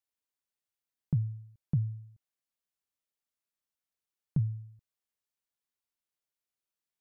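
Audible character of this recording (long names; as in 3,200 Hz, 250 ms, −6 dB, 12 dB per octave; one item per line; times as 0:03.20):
background noise floor −92 dBFS
spectral slope −19.0 dB per octave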